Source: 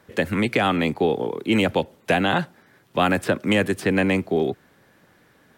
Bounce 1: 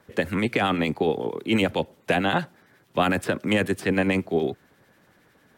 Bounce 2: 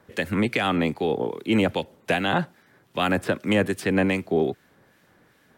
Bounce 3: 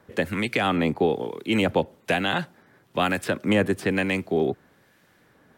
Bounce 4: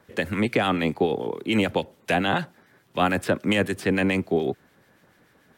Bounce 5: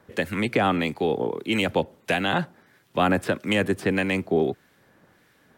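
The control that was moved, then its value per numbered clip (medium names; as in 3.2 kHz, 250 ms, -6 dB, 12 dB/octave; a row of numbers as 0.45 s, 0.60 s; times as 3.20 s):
harmonic tremolo, rate: 11 Hz, 2.5 Hz, 1.1 Hz, 6.9 Hz, 1.6 Hz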